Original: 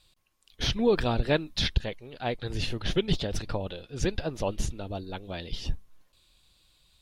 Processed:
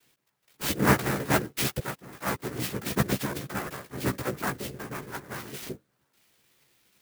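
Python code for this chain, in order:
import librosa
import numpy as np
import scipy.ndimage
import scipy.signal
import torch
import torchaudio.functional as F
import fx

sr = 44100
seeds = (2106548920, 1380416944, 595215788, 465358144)

y = fx.noise_vocoder(x, sr, seeds[0], bands=3)
y = fx.chorus_voices(y, sr, voices=6, hz=0.55, base_ms=15, depth_ms=1.3, mix_pct=40)
y = fx.clock_jitter(y, sr, seeds[1], jitter_ms=0.045)
y = F.gain(torch.from_numpy(y), 3.5).numpy()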